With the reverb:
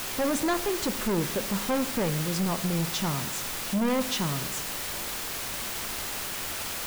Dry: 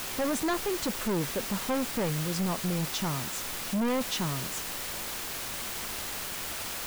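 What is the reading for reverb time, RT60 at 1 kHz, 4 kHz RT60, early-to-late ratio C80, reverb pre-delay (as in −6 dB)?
1.1 s, 1.1 s, 1.0 s, 14.5 dB, 6 ms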